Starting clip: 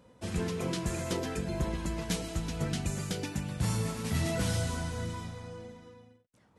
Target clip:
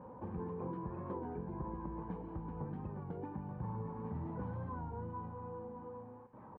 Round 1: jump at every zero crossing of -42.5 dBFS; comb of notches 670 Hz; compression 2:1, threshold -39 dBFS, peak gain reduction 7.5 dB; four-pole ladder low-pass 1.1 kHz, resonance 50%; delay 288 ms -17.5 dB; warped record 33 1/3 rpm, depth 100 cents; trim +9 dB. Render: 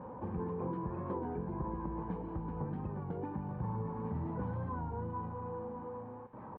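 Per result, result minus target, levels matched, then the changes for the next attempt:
jump at every zero crossing: distortion +7 dB; compression: peak gain reduction -3.5 dB
change: jump at every zero crossing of -50 dBFS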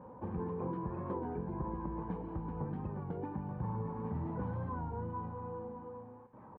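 compression: peak gain reduction -3.5 dB
change: compression 2:1, threshold -46 dBFS, peak gain reduction 10.5 dB

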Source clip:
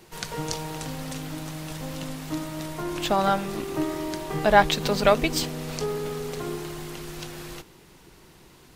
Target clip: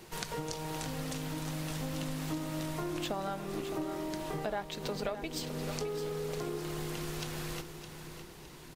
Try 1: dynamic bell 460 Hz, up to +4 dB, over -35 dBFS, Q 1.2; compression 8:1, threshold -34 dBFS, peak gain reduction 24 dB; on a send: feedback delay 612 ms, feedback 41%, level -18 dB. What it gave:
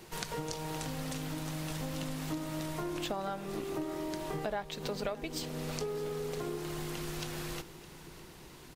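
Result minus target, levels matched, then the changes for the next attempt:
echo-to-direct -8 dB
change: feedback delay 612 ms, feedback 41%, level -10 dB

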